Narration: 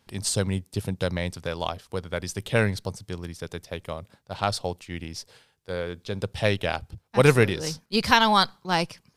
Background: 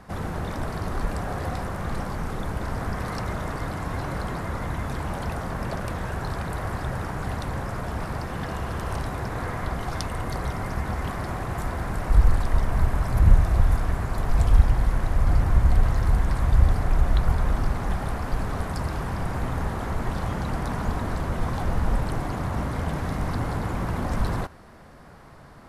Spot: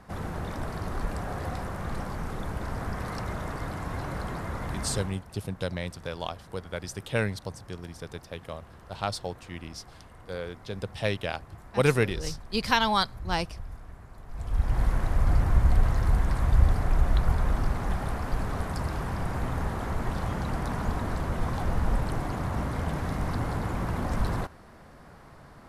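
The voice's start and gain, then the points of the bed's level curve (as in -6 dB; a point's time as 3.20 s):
4.60 s, -5.0 dB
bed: 4.98 s -4 dB
5.24 s -20.5 dB
14.26 s -20.5 dB
14.80 s -2.5 dB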